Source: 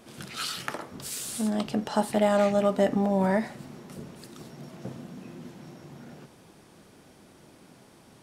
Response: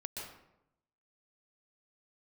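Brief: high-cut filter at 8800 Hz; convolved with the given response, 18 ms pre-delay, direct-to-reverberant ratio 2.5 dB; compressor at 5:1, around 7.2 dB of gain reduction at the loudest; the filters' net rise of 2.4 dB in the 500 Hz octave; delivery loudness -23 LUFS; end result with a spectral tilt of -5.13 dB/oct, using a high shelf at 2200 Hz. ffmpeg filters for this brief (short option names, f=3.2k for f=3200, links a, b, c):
-filter_complex "[0:a]lowpass=8.8k,equalizer=f=500:t=o:g=3.5,highshelf=f=2.2k:g=-4.5,acompressor=threshold=-24dB:ratio=5,asplit=2[a][b];[1:a]atrim=start_sample=2205,adelay=18[c];[b][c]afir=irnorm=-1:irlink=0,volume=-2dB[d];[a][d]amix=inputs=2:normalize=0,volume=7dB"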